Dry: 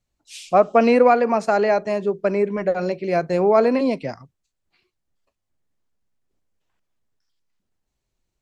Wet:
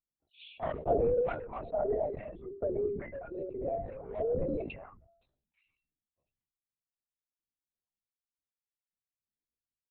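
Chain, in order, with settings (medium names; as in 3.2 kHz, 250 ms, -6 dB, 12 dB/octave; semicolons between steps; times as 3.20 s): resonances exaggerated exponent 2; in parallel at -7 dB: saturation -13 dBFS, distortion -14 dB; on the sum: high-pass 210 Hz 12 dB/octave; feedback comb 680 Hz, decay 0.28 s, mix 60%; phase shifter stages 2, 1.4 Hz, lowest notch 350–2900 Hz; LPC vocoder at 8 kHz whisper; tempo 0.85×; decay stretcher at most 69 dB/s; trim -7 dB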